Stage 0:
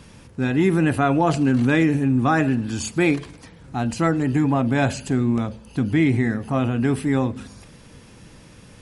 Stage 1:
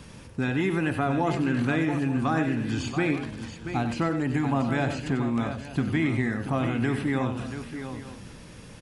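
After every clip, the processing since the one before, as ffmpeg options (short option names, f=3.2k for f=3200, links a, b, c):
-filter_complex "[0:a]acrossover=split=790|4400[a][b][c];[a]acompressor=threshold=-25dB:ratio=4[d];[b]acompressor=threshold=-31dB:ratio=4[e];[c]acompressor=threshold=-55dB:ratio=4[f];[d][e][f]amix=inputs=3:normalize=0,asplit=2[g][h];[h]aecho=0:1:94|682|881:0.335|0.335|0.15[i];[g][i]amix=inputs=2:normalize=0"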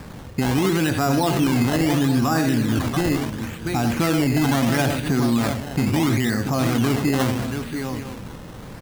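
-af "alimiter=limit=-19.5dB:level=0:latency=1:release=21,acrusher=samples=13:mix=1:aa=0.000001:lfo=1:lforange=13:lforate=0.74,volume=8dB"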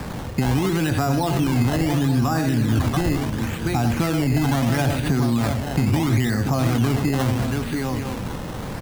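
-filter_complex "[0:a]equalizer=f=790:t=o:w=0.77:g=2.5,acrossover=split=120[a][b];[b]acompressor=threshold=-32dB:ratio=2.5[c];[a][c]amix=inputs=2:normalize=0,volume=7dB"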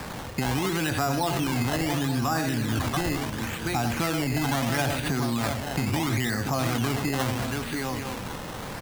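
-af "lowshelf=f=460:g=-9"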